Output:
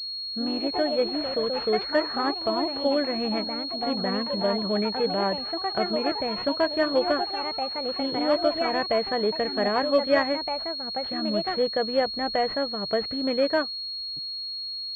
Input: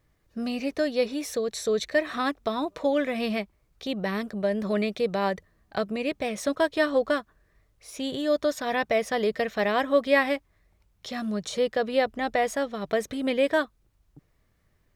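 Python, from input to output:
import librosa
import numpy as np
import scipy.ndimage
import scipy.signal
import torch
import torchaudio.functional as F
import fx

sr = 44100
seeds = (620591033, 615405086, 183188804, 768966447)

y = fx.echo_pitch(x, sr, ms=91, semitones=3, count=3, db_per_echo=-6.0)
y = fx.pwm(y, sr, carrier_hz=4300.0)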